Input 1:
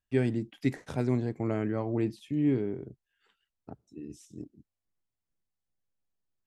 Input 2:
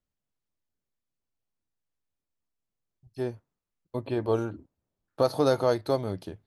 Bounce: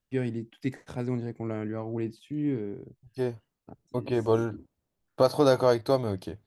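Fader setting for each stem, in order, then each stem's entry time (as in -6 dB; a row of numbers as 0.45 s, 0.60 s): -2.5 dB, +2.0 dB; 0.00 s, 0.00 s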